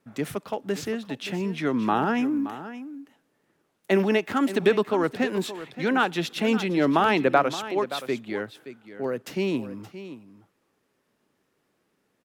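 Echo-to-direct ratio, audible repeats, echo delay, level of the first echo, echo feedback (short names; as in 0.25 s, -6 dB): -13.5 dB, 1, 0.573 s, -13.5 dB, no steady repeat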